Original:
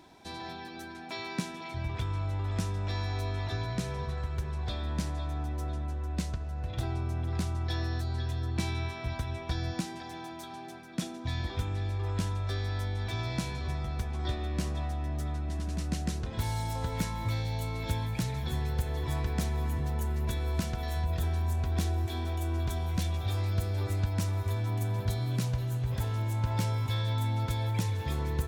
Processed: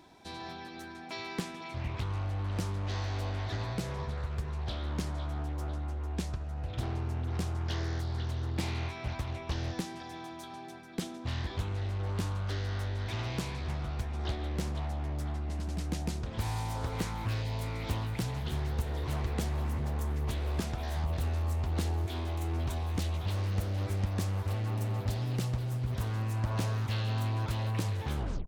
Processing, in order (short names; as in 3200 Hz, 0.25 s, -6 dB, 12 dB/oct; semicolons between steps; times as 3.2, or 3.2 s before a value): tape stop at the end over 0.31 s; Doppler distortion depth 0.99 ms; gain -1.5 dB